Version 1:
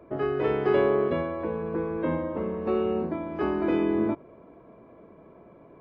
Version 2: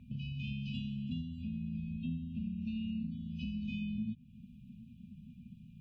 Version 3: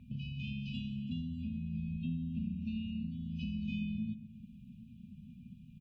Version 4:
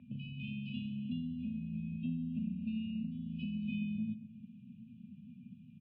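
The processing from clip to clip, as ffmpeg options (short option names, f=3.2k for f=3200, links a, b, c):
-af "afftfilt=real='re*(1-between(b*sr/4096,250,2400))':imag='im*(1-between(b*sr/4096,250,2400))':win_size=4096:overlap=0.75,acompressor=threshold=-46dB:ratio=2.5,volume=6dB"
-filter_complex "[0:a]asplit=2[a][b];[b]adelay=133,lowpass=f=1.6k:p=1,volume=-11.5dB,asplit=2[c][d];[d]adelay=133,lowpass=f=1.6k:p=1,volume=0.5,asplit=2[e][f];[f]adelay=133,lowpass=f=1.6k:p=1,volume=0.5,asplit=2[g][h];[h]adelay=133,lowpass=f=1.6k:p=1,volume=0.5,asplit=2[i][j];[j]adelay=133,lowpass=f=1.6k:p=1,volume=0.5[k];[a][c][e][g][i][k]amix=inputs=6:normalize=0"
-af "highpass=f=110:w=0.5412,highpass=f=110:w=1.3066,equalizer=f=150:t=q:w=4:g=-4,equalizer=f=290:t=q:w=4:g=7,equalizer=f=590:t=q:w=4:g=5,lowpass=f=3.1k:w=0.5412,lowpass=f=3.1k:w=1.3066"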